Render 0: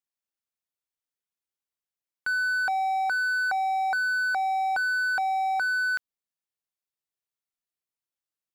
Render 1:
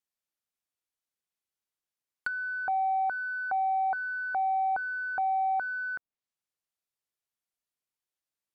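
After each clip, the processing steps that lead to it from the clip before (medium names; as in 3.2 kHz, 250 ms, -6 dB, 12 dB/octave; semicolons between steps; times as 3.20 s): low-pass that closes with the level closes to 1 kHz, closed at -28 dBFS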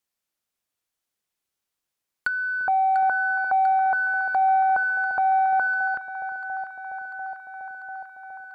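echo whose repeats swap between lows and highs 347 ms, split 880 Hz, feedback 85%, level -9 dB; trim +7 dB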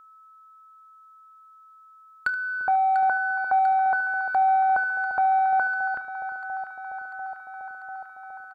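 early reflections 29 ms -18 dB, 75 ms -16.5 dB; whistle 1.3 kHz -49 dBFS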